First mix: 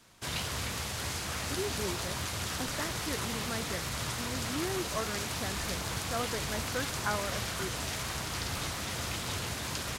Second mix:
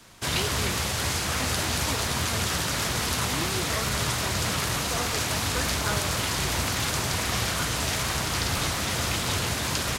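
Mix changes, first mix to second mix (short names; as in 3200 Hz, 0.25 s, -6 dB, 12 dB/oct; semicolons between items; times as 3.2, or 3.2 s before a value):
speech: entry -1.20 s; background +8.5 dB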